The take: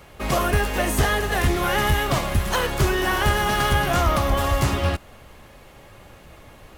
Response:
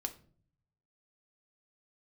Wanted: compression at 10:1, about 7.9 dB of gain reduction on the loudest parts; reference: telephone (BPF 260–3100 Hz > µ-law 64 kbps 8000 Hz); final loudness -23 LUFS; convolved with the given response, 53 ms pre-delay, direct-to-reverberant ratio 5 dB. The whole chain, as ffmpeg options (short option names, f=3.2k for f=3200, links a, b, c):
-filter_complex "[0:a]acompressor=threshold=-23dB:ratio=10,asplit=2[a][b];[1:a]atrim=start_sample=2205,adelay=53[c];[b][c]afir=irnorm=-1:irlink=0,volume=-4.5dB[d];[a][d]amix=inputs=2:normalize=0,highpass=260,lowpass=3.1k,volume=5.5dB" -ar 8000 -c:a pcm_mulaw